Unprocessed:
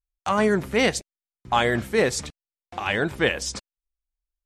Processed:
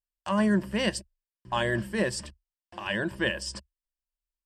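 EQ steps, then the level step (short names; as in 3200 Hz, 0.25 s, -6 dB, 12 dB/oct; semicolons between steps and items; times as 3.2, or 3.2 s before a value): dynamic EQ 190 Hz, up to +6 dB, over -40 dBFS, Q 3; ripple EQ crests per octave 1.3, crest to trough 11 dB; -8.0 dB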